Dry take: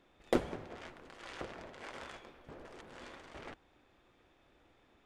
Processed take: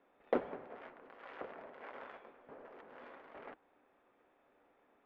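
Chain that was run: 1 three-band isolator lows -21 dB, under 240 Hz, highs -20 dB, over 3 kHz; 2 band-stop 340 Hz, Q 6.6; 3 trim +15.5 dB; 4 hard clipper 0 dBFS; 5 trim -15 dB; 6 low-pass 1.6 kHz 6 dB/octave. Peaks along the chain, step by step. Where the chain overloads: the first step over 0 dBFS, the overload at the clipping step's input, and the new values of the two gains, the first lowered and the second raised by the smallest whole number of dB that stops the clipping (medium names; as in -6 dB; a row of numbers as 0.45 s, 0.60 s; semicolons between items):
-17.5 dBFS, -18.0 dBFS, -2.5 dBFS, -2.5 dBFS, -17.5 dBFS, -19.0 dBFS; nothing clips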